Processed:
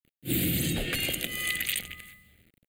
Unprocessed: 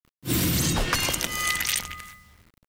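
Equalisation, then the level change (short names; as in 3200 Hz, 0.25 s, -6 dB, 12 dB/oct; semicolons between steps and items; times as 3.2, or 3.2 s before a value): low shelf 120 Hz -9.5 dB; bell 1400 Hz -7.5 dB 0.87 oct; fixed phaser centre 2400 Hz, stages 4; 0.0 dB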